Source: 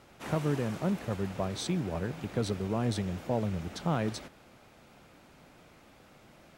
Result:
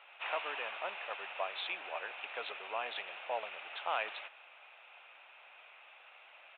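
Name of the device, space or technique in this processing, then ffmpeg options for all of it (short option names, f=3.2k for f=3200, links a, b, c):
musical greeting card: -af "aresample=8000,aresample=44100,highpass=f=700:w=0.5412,highpass=f=700:w=1.3066,equalizer=f=2.6k:t=o:w=0.37:g=11,volume=1dB"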